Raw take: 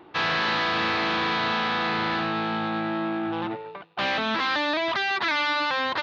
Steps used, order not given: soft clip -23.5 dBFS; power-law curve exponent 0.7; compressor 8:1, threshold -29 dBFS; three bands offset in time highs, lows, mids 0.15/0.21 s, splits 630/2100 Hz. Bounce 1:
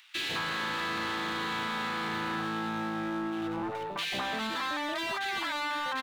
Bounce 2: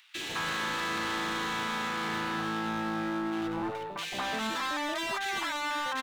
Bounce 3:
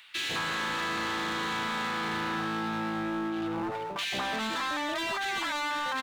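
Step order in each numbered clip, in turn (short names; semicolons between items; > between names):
power-law curve > three bands offset in time > compressor > soft clip; soft clip > power-law curve > compressor > three bands offset in time; soft clip > three bands offset in time > power-law curve > compressor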